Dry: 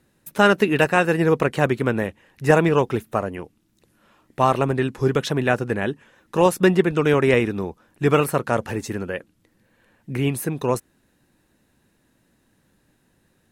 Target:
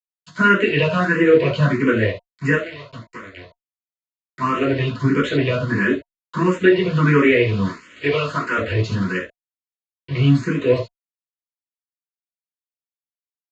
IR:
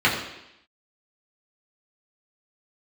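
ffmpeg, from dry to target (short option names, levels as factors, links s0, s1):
-filter_complex "[0:a]aeval=exprs='val(0)+0.5*0.0447*sgn(val(0))':c=same,asettb=1/sr,asplit=3[s0][s1][s2];[s0]atrim=end=7.654[s3];[s1]atrim=start=7.65:end=8.57,asetpts=PTS-STARTPTS,afade=t=in:d=0.004:c=qsin,afade=t=out:st=0.916:d=0.004:c=qsin,highpass=f=460:p=1[s4];[s2]atrim=start=8.566[s5];[s3][s4]acrossfade=d=0.004:c1=hsin:c2=qsin[s6];[s6][s5]acrossfade=d=0.004:c1=qsin:c2=hsin,alimiter=limit=0.376:level=0:latency=1:release=178,asettb=1/sr,asplit=3[s7][s8][s9];[s7]atrim=end=2.554[s10];[s8]atrim=start=2.55:end=4.41,asetpts=PTS-STARTPTS,afade=t=in:d=0.004:c=qsin,afade=t=out:st=1.856:d=0.004:c=qsin,acompressor=threshold=0.0316:ratio=10[s11];[s9]atrim=start=4.406[s12];[s10][s11]acrossfade=d=0.004:c1=hsin:c2=qsin[s13];[s13][s12]acrossfade=d=0.004:c1=qsin:c2=hsin,aeval=exprs='val(0)*gte(abs(val(0)),0.0398)':c=same[s14];[1:a]atrim=start_sample=2205,atrim=end_sample=3969[s15];[s14][s15]afir=irnorm=-1:irlink=0,aresample=16000,aresample=44100,asuperstop=centerf=810:order=20:qfactor=3.8,asplit=2[s16][s17];[s17]afreqshift=1.5[s18];[s16][s18]amix=inputs=2:normalize=1,volume=0.266"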